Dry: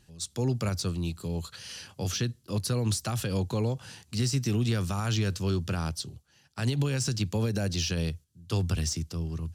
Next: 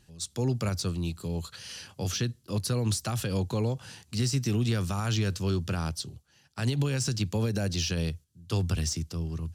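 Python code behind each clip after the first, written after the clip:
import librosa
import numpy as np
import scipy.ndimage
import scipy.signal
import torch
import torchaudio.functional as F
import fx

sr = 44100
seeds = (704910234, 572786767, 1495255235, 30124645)

y = x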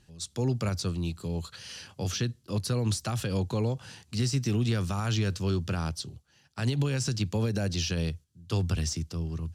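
y = fx.high_shelf(x, sr, hz=11000.0, db=-9.0)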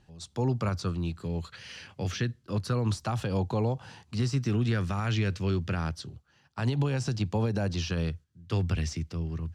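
y = fx.lowpass(x, sr, hz=2800.0, slope=6)
y = fx.bell_lfo(y, sr, hz=0.28, low_hz=780.0, high_hz=2200.0, db=7)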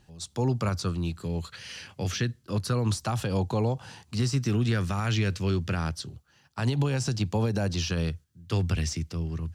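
y = fx.high_shelf(x, sr, hz=6700.0, db=10.0)
y = y * 10.0 ** (1.5 / 20.0)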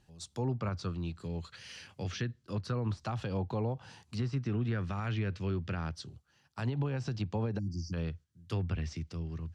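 y = fx.env_lowpass_down(x, sr, base_hz=2200.0, full_db=-22.0)
y = fx.spec_erase(y, sr, start_s=7.59, length_s=0.34, low_hz=350.0, high_hz=4500.0)
y = y * 10.0 ** (-7.0 / 20.0)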